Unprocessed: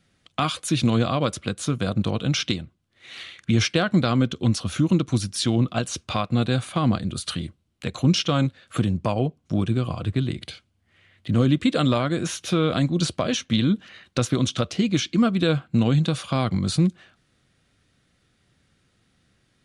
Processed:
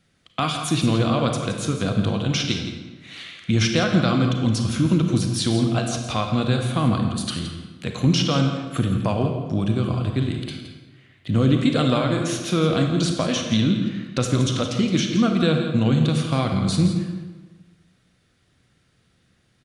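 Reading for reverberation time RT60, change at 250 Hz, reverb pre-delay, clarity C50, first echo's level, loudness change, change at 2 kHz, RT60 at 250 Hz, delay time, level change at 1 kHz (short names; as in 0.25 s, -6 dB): 1.3 s, +2.0 dB, 32 ms, 4.5 dB, -10.5 dB, +2.0 dB, +1.5 dB, 1.4 s, 0.168 s, +1.5 dB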